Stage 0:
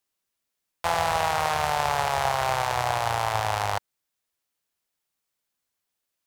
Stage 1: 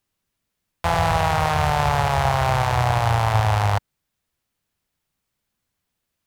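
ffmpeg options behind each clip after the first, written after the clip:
ffmpeg -i in.wav -filter_complex "[0:a]bass=frequency=250:gain=12,treble=frequency=4000:gain=-4,asplit=2[link_01][link_02];[link_02]alimiter=limit=-17dB:level=0:latency=1:release=20,volume=-2dB[link_03];[link_01][link_03]amix=inputs=2:normalize=0" out.wav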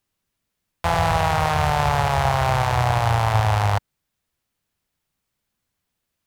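ffmpeg -i in.wav -af anull out.wav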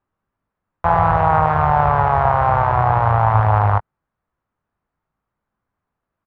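ffmpeg -i in.wav -filter_complex "[0:a]lowpass=frequency=1200:width_type=q:width=1.7,asplit=2[link_01][link_02];[link_02]adelay=19,volume=-10.5dB[link_03];[link_01][link_03]amix=inputs=2:normalize=0,volume=2dB" out.wav

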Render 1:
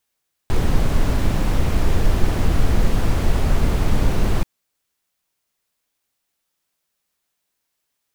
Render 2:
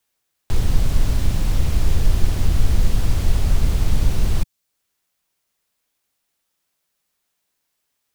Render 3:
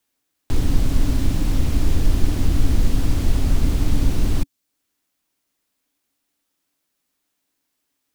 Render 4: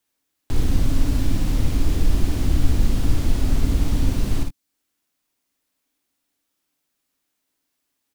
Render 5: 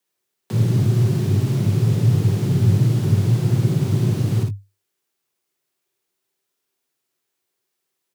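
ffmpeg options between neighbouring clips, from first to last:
ffmpeg -i in.wav -filter_complex "[0:a]acrossover=split=140|3000[link_01][link_02][link_03];[link_02]acompressor=threshold=-50dB:ratio=1.5[link_04];[link_01][link_04][link_03]amix=inputs=3:normalize=0,volume=1.5dB" out.wav
ffmpeg -i in.wav -af "equalizer=frequency=280:width_type=o:width=0.43:gain=13,volume=-1dB" out.wav
ffmpeg -i in.wav -af "aecho=1:1:55|74:0.596|0.211,volume=-2.5dB" out.wav
ffmpeg -i in.wav -af "afreqshift=99,volume=-1.5dB" out.wav

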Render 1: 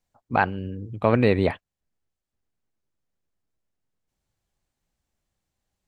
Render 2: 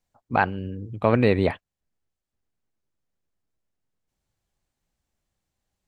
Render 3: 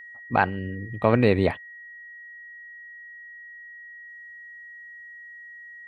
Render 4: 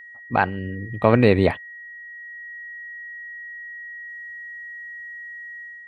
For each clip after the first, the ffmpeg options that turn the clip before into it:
ffmpeg -i in.wav -af anull out.wav
ffmpeg -i in.wav -af "aeval=exprs='val(0)+0.00891*sin(2*PI*1900*n/s)':channel_layout=same" out.wav
ffmpeg -i in.wav -af "dynaudnorm=framelen=510:gausssize=3:maxgain=6dB,volume=1dB" out.wav

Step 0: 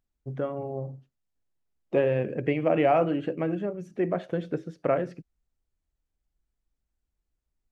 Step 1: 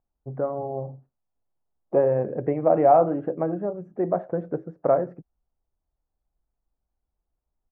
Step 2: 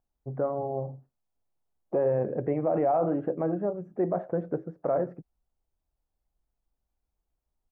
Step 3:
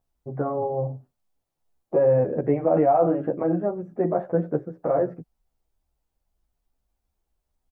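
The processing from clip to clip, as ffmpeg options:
ffmpeg -i in.wav -af "firequalizer=gain_entry='entry(290,0);entry(770,8);entry(3100,-29)':delay=0.05:min_phase=1" out.wav
ffmpeg -i in.wav -af "alimiter=limit=-17dB:level=0:latency=1:release=17,volume=-1dB" out.wav
ffmpeg -i in.wav -filter_complex "[0:a]asplit=2[link_01][link_02];[link_02]adelay=11.1,afreqshift=-2.4[link_03];[link_01][link_03]amix=inputs=2:normalize=1,volume=8dB" out.wav

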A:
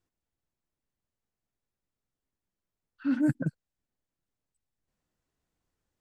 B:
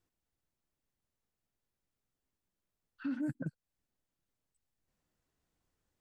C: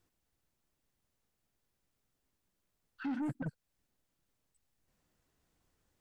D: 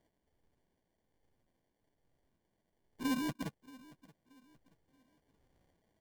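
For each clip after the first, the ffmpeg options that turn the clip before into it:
ffmpeg -i in.wav -af "acompressor=threshold=-37dB:ratio=3" out.wav
ffmpeg -i in.wav -af "asoftclip=type=tanh:threshold=-38dB,volume=5.5dB" out.wav
ffmpeg -i in.wav -af "afftfilt=real='re*pow(10,15/40*sin(2*PI*(1.9*log(max(b,1)*sr/1024/100)/log(2)-(-1.2)*(pts-256)/sr)))':imag='im*pow(10,15/40*sin(2*PI*(1.9*log(max(b,1)*sr/1024/100)/log(2)-(-1.2)*(pts-256)/sr)))':win_size=1024:overlap=0.75,acrusher=samples=34:mix=1:aa=0.000001,aecho=1:1:628|1256|1884:0.0891|0.033|0.0122" out.wav

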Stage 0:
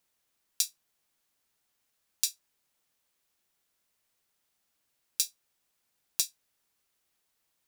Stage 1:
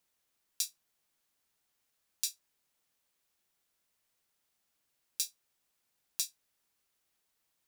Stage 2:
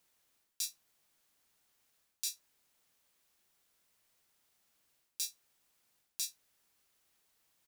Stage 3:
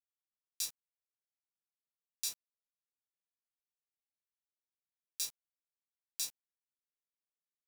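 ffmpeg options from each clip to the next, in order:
ffmpeg -i in.wav -af "alimiter=limit=-9dB:level=0:latency=1:release=31,volume=-2dB" out.wav
ffmpeg -i in.wav -filter_complex "[0:a]areverse,acompressor=threshold=-39dB:ratio=6,areverse,asplit=2[link_01][link_02];[link_02]adelay=33,volume=-14dB[link_03];[link_01][link_03]amix=inputs=2:normalize=0,volume=4.5dB" out.wav
ffmpeg -i in.wav -af "acrusher=bits=7:mix=0:aa=0.000001" out.wav

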